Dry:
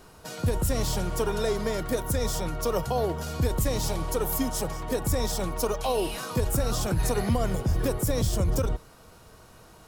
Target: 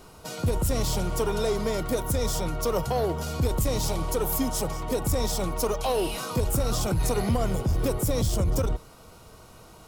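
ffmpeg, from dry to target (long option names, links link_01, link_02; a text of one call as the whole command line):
ffmpeg -i in.wav -af "bandreject=frequency=1700:width=5.1,aeval=exprs='0.178*(cos(1*acos(clip(val(0)/0.178,-1,1)))-cos(1*PI/2))+0.0112*(cos(5*acos(clip(val(0)/0.178,-1,1)))-cos(5*PI/2))':channel_layout=same" out.wav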